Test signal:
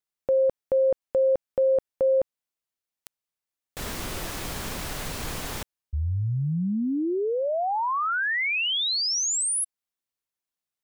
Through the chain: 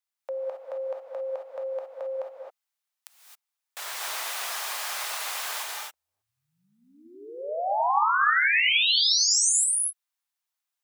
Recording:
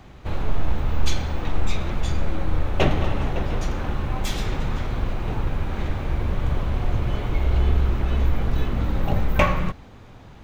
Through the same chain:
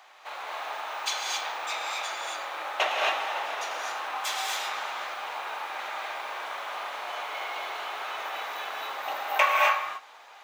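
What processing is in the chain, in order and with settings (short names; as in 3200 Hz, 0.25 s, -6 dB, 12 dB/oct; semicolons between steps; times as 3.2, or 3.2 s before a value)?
HPF 720 Hz 24 dB/oct; non-linear reverb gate 0.29 s rising, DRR -1.5 dB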